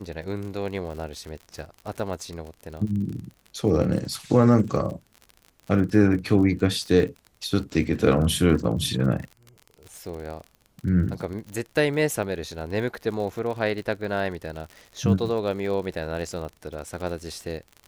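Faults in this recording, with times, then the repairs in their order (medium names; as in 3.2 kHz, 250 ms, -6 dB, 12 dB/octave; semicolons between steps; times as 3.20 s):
crackle 51 per s -33 dBFS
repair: de-click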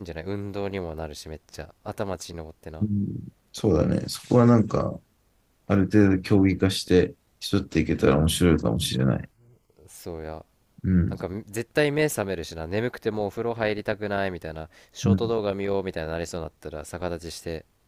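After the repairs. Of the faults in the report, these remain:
nothing left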